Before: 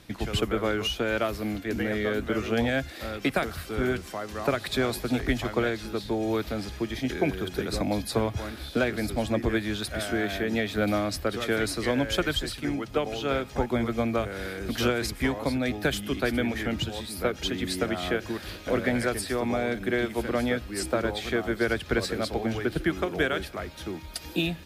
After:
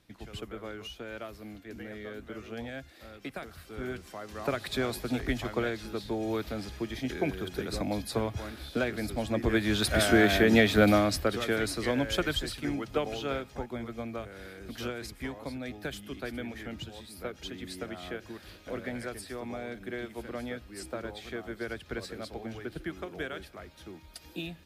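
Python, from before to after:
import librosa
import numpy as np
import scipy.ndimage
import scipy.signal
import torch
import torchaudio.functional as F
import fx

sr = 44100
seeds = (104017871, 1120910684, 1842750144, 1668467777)

y = fx.gain(x, sr, db=fx.line((3.37, -14.0), (4.57, -4.5), (9.28, -4.5), (9.93, 6.0), (10.66, 6.0), (11.57, -3.0), (13.14, -3.0), (13.67, -11.0)))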